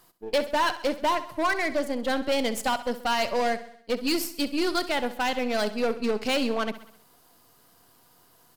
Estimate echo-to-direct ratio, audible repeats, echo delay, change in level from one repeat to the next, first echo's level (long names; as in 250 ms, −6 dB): −13.0 dB, 4, 65 ms, −5.5 dB, −14.5 dB